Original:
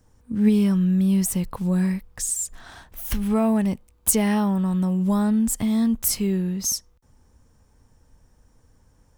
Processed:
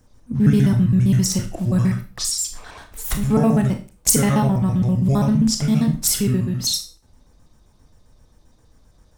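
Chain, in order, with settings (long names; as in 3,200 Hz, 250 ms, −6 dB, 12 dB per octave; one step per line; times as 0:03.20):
pitch shifter gated in a rhythm −7 semitones, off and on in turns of 66 ms
four-comb reverb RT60 0.34 s, combs from 25 ms, DRR 5.5 dB
level +3.5 dB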